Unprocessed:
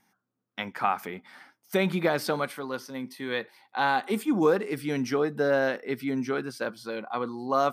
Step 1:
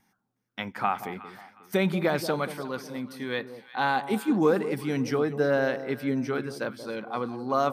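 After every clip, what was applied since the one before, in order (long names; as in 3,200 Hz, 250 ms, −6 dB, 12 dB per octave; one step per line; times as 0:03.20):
low-shelf EQ 120 Hz +10 dB
delay that swaps between a low-pass and a high-pass 181 ms, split 970 Hz, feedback 55%, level −11 dB
level −1 dB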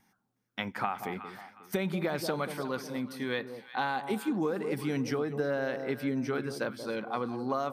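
downward compressor 10 to 1, threshold −27 dBFS, peak gain reduction 10.5 dB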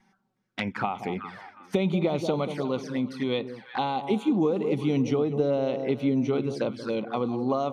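high-frequency loss of the air 86 metres
flanger swept by the level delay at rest 5.4 ms, full sweep at −31.5 dBFS
level +7.5 dB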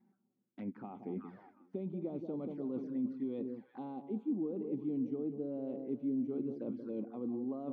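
reversed playback
downward compressor 6 to 1, threshold −32 dBFS, peak gain reduction 13 dB
reversed playback
resonant band-pass 280 Hz, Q 2.2
level +1 dB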